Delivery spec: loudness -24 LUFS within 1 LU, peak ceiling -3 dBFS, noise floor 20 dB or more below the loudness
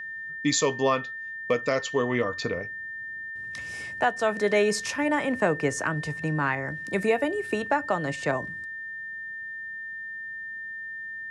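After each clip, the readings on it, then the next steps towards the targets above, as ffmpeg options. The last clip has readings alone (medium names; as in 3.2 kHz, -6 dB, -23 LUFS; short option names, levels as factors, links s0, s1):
steady tone 1.8 kHz; tone level -34 dBFS; loudness -28.0 LUFS; peak level -11.5 dBFS; loudness target -24.0 LUFS
-> -af "bandreject=f=1800:w=30"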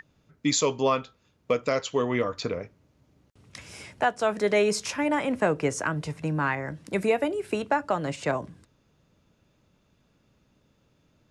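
steady tone not found; loudness -27.0 LUFS; peak level -12.0 dBFS; loudness target -24.0 LUFS
-> -af "volume=1.41"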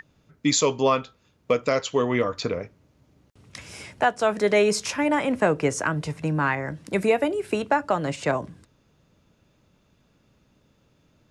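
loudness -24.0 LUFS; peak level -9.0 dBFS; noise floor -64 dBFS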